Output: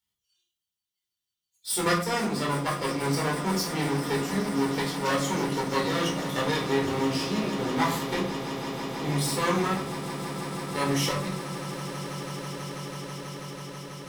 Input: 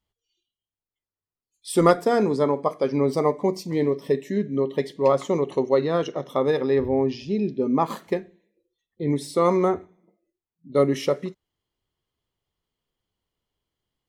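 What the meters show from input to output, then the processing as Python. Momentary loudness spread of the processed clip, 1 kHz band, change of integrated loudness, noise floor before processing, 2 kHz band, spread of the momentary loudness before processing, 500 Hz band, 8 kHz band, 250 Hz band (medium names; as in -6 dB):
10 LU, -1.0 dB, -5.0 dB, under -85 dBFS, +6.5 dB, 7 LU, -8.5 dB, no reading, -3.0 dB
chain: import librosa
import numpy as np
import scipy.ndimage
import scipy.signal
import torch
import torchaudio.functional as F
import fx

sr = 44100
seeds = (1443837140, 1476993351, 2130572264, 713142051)

p1 = np.where(x < 0.0, 10.0 ** (-12.0 / 20.0) * x, x)
p2 = scipy.signal.sosfilt(scipy.signal.butter(2, 73.0, 'highpass', fs=sr, output='sos'), p1)
p3 = fx.tone_stack(p2, sr, knobs='5-5-5')
p4 = fx.room_shoebox(p3, sr, seeds[0], volume_m3=420.0, walls='furnished', distance_m=4.4)
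p5 = fx.rider(p4, sr, range_db=10, speed_s=0.5)
p6 = p4 + F.gain(torch.from_numpy(p5), 3.0).numpy()
p7 = fx.high_shelf(p6, sr, hz=4300.0, db=5.5)
p8 = p7 + fx.echo_swell(p7, sr, ms=163, loudest=8, wet_db=-16.0, dry=0)
y = fx.end_taper(p8, sr, db_per_s=120.0)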